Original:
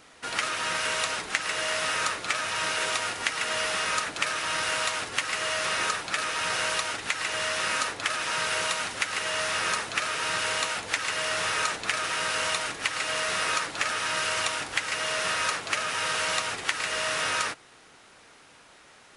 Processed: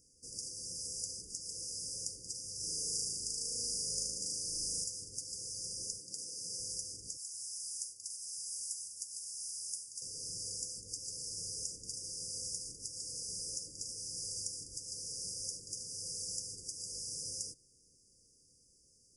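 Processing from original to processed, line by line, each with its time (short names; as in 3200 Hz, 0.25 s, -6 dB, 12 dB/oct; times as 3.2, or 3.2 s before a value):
2.56–4.84 flutter echo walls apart 6.5 m, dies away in 1.3 s
5.98–6.6 HPF 150 Hz
7.17–10.02 pre-emphasis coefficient 0.9
whole clip: low shelf 130 Hz +10 dB; FFT band-reject 550–4700 Hz; passive tone stack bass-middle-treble 5-5-5; gain +1 dB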